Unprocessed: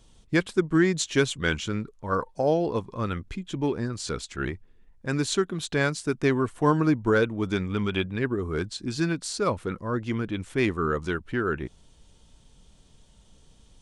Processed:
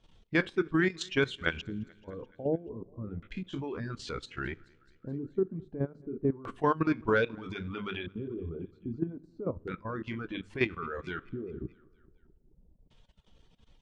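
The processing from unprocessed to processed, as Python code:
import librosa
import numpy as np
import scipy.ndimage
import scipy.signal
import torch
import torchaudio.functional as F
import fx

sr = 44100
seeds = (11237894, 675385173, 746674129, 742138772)

y = fx.spec_trails(x, sr, decay_s=0.32)
y = fx.high_shelf(y, sr, hz=4700.0, db=5.0)
y = fx.hum_notches(y, sr, base_hz=50, count=8)
y = fx.level_steps(y, sr, step_db=11)
y = fx.filter_lfo_lowpass(y, sr, shape='square', hz=0.31, low_hz=380.0, high_hz=2900.0, q=1.0)
y = fx.echo_feedback(y, sr, ms=215, feedback_pct=56, wet_db=-16)
y = fx.dereverb_blind(y, sr, rt60_s=1.3)
y = y * librosa.db_to_amplitude(-1.5)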